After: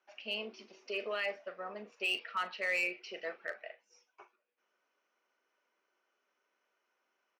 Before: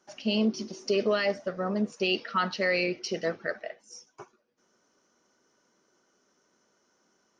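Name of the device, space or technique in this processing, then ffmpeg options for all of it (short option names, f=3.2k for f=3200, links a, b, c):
megaphone: -filter_complex "[0:a]highpass=550,lowpass=3.1k,equalizer=f=2.5k:t=o:w=0.55:g=10,asoftclip=type=hard:threshold=-18.5dB,asplit=2[a][b];[b]adelay=39,volume=-13dB[c];[a][c]amix=inputs=2:normalize=0,volume=-8.5dB"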